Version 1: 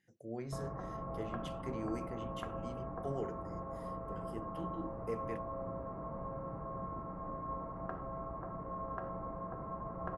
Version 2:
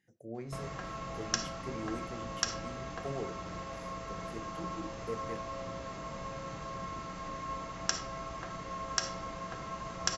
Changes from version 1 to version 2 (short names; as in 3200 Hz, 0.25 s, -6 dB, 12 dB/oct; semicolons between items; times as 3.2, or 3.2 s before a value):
speech: send +7.0 dB; background: remove LPF 1100 Hz 24 dB/oct